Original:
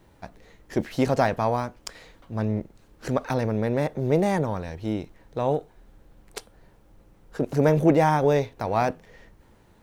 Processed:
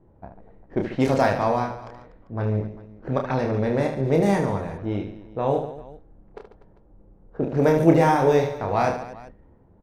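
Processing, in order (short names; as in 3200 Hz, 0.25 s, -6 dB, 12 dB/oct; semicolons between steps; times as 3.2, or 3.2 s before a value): low-pass opened by the level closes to 680 Hz, open at -17 dBFS; reverse bouncing-ball echo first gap 30 ms, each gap 1.5×, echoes 5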